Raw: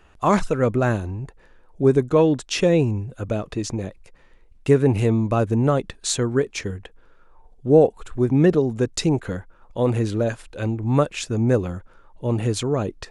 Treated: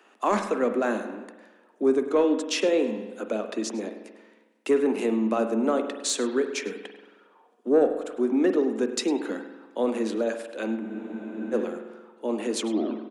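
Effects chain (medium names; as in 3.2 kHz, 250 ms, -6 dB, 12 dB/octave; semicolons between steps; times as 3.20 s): tape stop on the ending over 0.50 s; steep high-pass 210 Hz 96 dB/octave; in parallel at -1 dB: compression, threshold -29 dBFS, peak gain reduction 18 dB; on the sum: saturation -5 dBFS, distortion -24 dB; on a send: delay 104 ms -18.5 dB; on the sum: spring tank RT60 1.2 s, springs 45 ms, chirp 65 ms, DRR 7.5 dB; spectral freeze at 10.82 s, 0.72 s; trim -5.5 dB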